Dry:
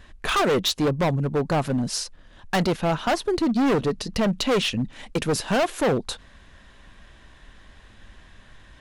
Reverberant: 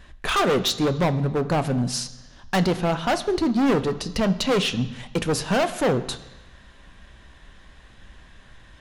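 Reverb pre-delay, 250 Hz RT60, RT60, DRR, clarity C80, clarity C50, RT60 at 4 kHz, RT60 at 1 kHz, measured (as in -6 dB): 3 ms, 1.0 s, 1.1 s, 11.0 dB, 16.0 dB, 14.5 dB, 1.1 s, 1.2 s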